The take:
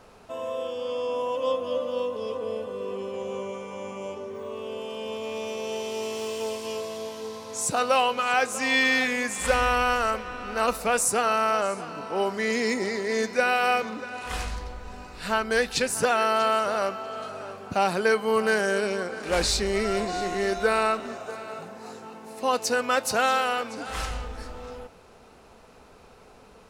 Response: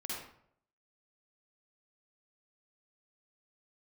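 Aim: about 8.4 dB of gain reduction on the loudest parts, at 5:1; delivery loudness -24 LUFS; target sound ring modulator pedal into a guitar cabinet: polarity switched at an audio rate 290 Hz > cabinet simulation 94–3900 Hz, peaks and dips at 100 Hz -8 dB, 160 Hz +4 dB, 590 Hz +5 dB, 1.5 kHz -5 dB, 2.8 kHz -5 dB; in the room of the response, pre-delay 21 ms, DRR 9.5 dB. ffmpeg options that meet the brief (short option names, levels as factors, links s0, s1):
-filter_complex "[0:a]acompressor=threshold=0.0447:ratio=5,asplit=2[s0][s1];[1:a]atrim=start_sample=2205,adelay=21[s2];[s1][s2]afir=irnorm=-1:irlink=0,volume=0.299[s3];[s0][s3]amix=inputs=2:normalize=0,aeval=exprs='val(0)*sgn(sin(2*PI*290*n/s))':c=same,highpass=94,equalizer=f=100:t=q:w=4:g=-8,equalizer=f=160:t=q:w=4:g=4,equalizer=f=590:t=q:w=4:g=5,equalizer=f=1500:t=q:w=4:g=-5,equalizer=f=2800:t=q:w=4:g=-5,lowpass=f=3900:w=0.5412,lowpass=f=3900:w=1.3066,volume=2.51"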